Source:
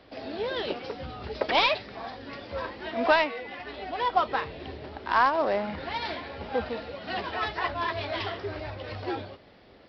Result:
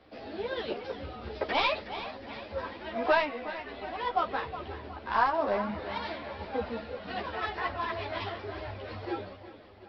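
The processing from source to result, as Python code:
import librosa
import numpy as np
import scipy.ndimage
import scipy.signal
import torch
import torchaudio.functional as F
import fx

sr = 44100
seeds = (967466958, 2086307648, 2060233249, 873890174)

y = fx.high_shelf(x, sr, hz=3700.0, db=-6.0)
y = fx.echo_feedback(y, sr, ms=366, feedback_pct=47, wet_db=-12.5)
y = fx.ensemble(y, sr)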